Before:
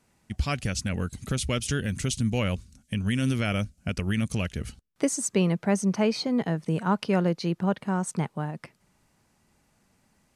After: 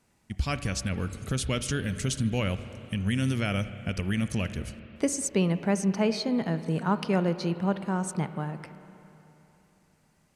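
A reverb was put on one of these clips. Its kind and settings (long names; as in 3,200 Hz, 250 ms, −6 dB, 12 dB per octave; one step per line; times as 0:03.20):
spring reverb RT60 3.3 s, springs 31/52/59 ms, chirp 25 ms, DRR 11 dB
level −1.5 dB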